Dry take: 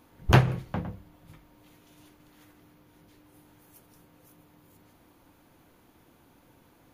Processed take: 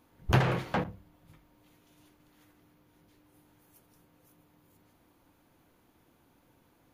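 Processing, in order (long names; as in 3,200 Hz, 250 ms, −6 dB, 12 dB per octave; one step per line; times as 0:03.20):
0:00.40–0:00.84: mid-hump overdrive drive 28 dB, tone 2,700 Hz, clips at −12.5 dBFS
level −6 dB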